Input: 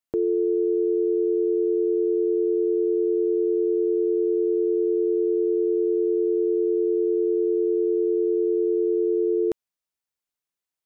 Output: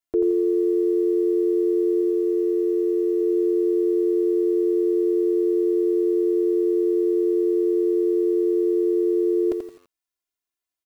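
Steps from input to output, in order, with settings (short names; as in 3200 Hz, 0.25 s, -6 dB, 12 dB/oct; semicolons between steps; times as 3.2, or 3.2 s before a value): 2.01–3.21 low shelf 160 Hz -7 dB; comb 2.9 ms, depth 92%; dynamic EQ 520 Hz, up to +6 dB, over -34 dBFS, Q 2.7; lo-fi delay 85 ms, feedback 35%, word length 8-bit, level -6 dB; gain -3 dB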